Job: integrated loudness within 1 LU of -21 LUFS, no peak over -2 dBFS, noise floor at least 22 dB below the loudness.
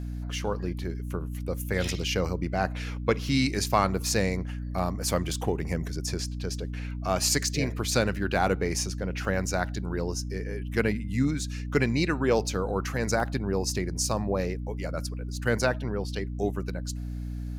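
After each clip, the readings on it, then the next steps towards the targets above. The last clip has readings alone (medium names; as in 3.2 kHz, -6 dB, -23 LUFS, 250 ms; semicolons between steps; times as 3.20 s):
dropouts 3; longest dropout 2.3 ms; hum 60 Hz; highest harmonic 300 Hz; hum level -31 dBFS; loudness -29.0 LUFS; peak level -8.0 dBFS; loudness target -21.0 LUFS
-> interpolate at 5.60/9.25/13.20 s, 2.3 ms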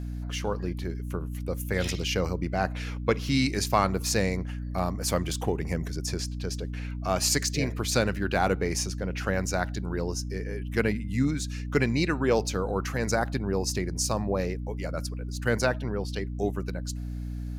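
dropouts 0; hum 60 Hz; highest harmonic 300 Hz; hum level -31 dBFS
-> de-hum 60 Hz, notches 5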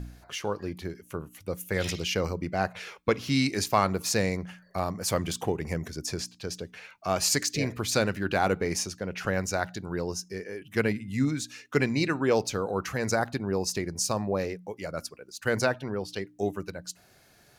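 hum not found; loudness -29.5 LUFS; peak level -9.0 dBFS; loudness target -21.0 LUFS
-> trim +8.5 dB; peak limiter -2 dBFS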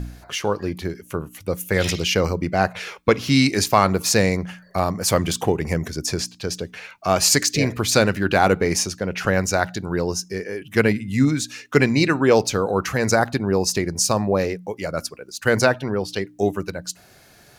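loudness -21.0 LUFS; peak level -2.0 dBFS; noise floor -51 dBFS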